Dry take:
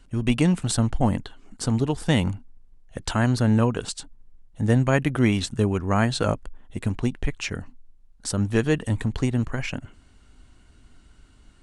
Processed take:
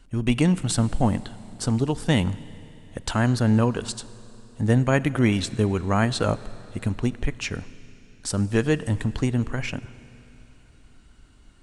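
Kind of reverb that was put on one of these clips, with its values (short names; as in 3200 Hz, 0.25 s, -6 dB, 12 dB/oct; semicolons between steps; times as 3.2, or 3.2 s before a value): Schroeder reverb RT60 3.3 s, combs from 33 ms, DRR 17 dB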